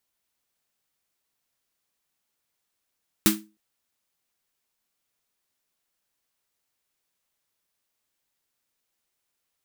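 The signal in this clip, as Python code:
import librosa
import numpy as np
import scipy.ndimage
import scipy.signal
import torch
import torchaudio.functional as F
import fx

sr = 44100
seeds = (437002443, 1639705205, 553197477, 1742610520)

y = fx.drum_snare(sr, seeds[0], length_s=0.31, hz=210.0, second_hz=320.0, noise_db=0.5, noise_from_hz=980.0, decay_s=0.31, noise_decay_s=0.22)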